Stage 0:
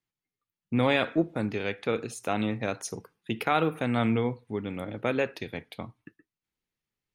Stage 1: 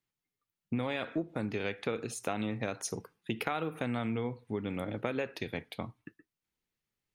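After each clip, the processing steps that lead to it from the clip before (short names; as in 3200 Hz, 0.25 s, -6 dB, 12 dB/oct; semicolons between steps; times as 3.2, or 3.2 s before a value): compressor 12:1, threshold -29 dBFS, peak gain reduction 11 dB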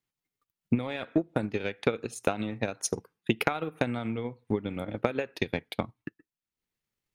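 transient shaper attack +10 dB, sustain -7 dB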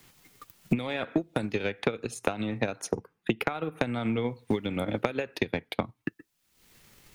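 three-band squash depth 100%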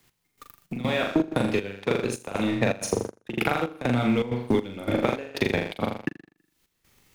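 flutter echo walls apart 7 m, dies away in 0.63 s; sample leveller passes 2; step gate "x...xxx..xxxx.xx" 160 bpm -12 dB; gain -3 dB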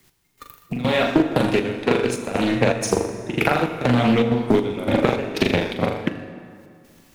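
bin magnitudes rounded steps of 15 dB; plate-style reverb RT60 2.2 s, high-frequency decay 0.7×, DRR 7.5 dB; Doppler distortion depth 0.33 ms; gain +6 dB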